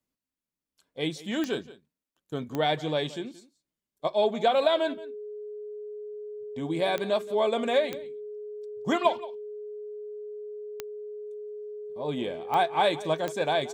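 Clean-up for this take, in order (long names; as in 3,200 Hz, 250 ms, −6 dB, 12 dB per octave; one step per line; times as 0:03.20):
click removal
notch filter 420 Hz, Q 30
echo removal 175 ms −18.5 dB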